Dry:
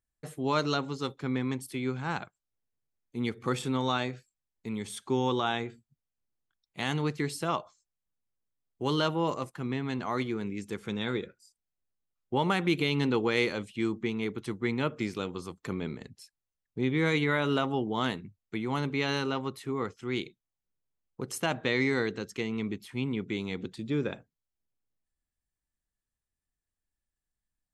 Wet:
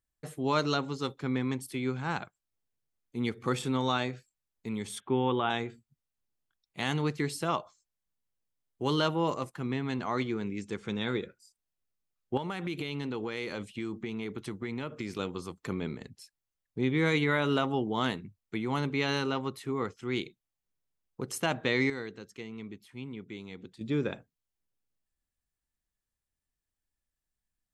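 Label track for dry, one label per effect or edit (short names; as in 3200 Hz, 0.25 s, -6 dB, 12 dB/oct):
5.000000	5.500000	steep low-pass 3400 Hz 72 dB/oct
10.050000	11.210000	LPF 8200 Hz 24 dB/oct
12.370000	15.190000	compressor, threshold -31 dBFS
21.900000	23.810000	gain -9.5 dB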